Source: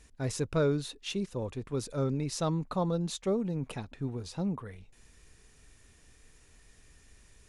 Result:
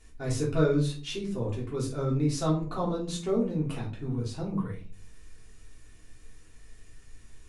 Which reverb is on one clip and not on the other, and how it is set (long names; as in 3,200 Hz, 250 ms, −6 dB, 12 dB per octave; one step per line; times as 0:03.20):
rectangular room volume 230 cubic metres, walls furnished, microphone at 3.3 metres
level −4.5 dB